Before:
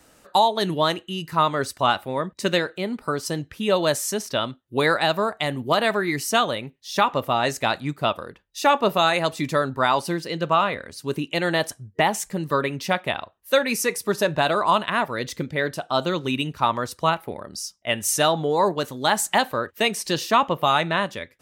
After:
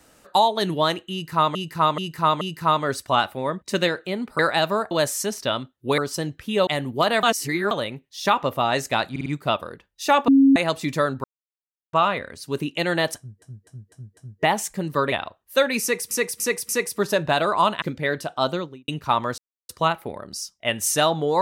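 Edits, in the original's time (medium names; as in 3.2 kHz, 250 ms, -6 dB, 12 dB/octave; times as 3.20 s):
1.12–1.55 s: loop, 4 plays
3.10–3.79 s: swap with 4.86–5.38 s
5.94–6.42 s: reverse
7.82 s: stutter 0.05 s, 4 plays
8.84–9.12 s: bleep 272 Hz -10.5 dBFS
9.80–10.49 s: mute
11.73–11.98 s: loop, 5 plays
12.68–13.08 s: delete
13.78–14.07 s: loop, 4 plays
14.91–15.35 s: delete
15.96–16.41 s: studio fade out
16.91 s: insert silence 0.31 s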